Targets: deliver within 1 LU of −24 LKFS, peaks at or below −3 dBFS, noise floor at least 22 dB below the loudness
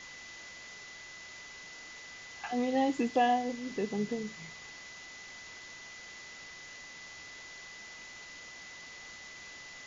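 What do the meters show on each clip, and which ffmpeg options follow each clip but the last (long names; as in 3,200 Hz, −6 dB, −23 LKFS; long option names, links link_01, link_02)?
interfering tone 2,000 Hz; level of the tone −48 dBFS; background noise floor −49 dBFS; target noise floor −60 dBFS; integrated loudness −37.5 LKFS; sample peak −15.0 dBFS; target loudness −24.0 LKFS
→ -af "bandreject=frequency=2000:width=30"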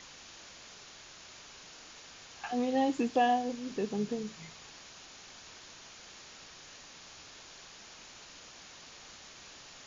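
interfering tone none found; background noise floor −52 dBFS; target noise floor −54 dBFS
→ -af "afftdn=noise_reduction=6:noise_floor=-52"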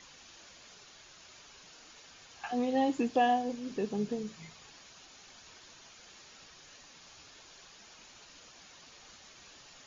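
background noise floor −56 dBFS; integrated loudness −32.0 LKFS; sample peak −15.0 dBFS; target loudness −24.0 LKFS
→ -af "volume=8dB"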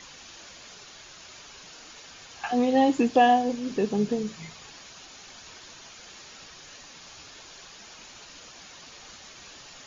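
integrated loudness −24.0 LKFS; sample peak −7.0 dBFS; background noise floor −48 dBFS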